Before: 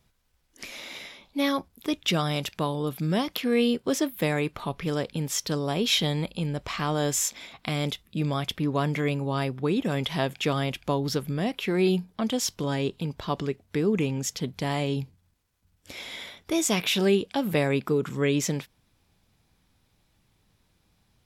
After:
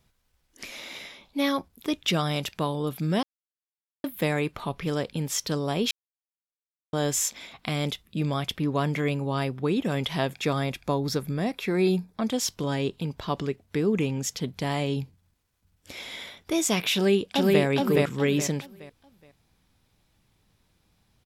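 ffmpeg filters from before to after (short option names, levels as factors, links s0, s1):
-filter_complex "[0:a]asettb=1/sr,asplit=3[s0][s1][s2];[s0]atrim=end=10.324[s3];[s1]atrim=start=10.32:end=12.34,asetpts=PTS-STARTPTS,afade=t=in:d=0.004:c=qsin,afade=t=out:st=2.016:d=0.004:c=qsin,bandreject=f=3000:w=5.5[s4];[s2]atrim=start=12.336[s5];[s3][s4]acrossfade=d=0.004:c1=hsin:c2=qsin[s6];[s6][s5]acrossfade=d=0.004:c1=qsin:c2=hsin,asplit=2[s7][s8];[s8]afade=t=in:st=16.93:d=0.01,afade=t=out:st=17.63:d=0.01,aecho=0:1:420|840|1260|1680:0.944061|0.283218|0.0849655|0.0254896[s9];[s7][s9]amix=inputs=2:normalize=0,asplit=5[s10][s11][s12][s13][s14];[s10]atrim=end=3.23,asetpts=PTS-STARTPTS,afade=t=out:st=3.226:d=0.004:c=hsin[s15];[s11]atrim=start=3.23:end=4.04,asetpts=PTS-STARTPTS,volume=0[s16];[s12]atrim=start=4.04:end=5.91,asetpts=PTS-STARTPTS,afade=t=in:d=0.004:c=hsin,afade=t=out:st=1.866:d=0.004:c=hsin[s17];[s13]atrim=start=5.91:end=6.93,asetpts=PTS-STARTPTS,volume=0[s18];[s14]atrim=start=6.93,asetpts=PTS-STARTPTS,afade=t=in:d=0.004:c=hsin[s19];[s15][s16][s17][s18][s19]concat=n=5:v=0:a=1"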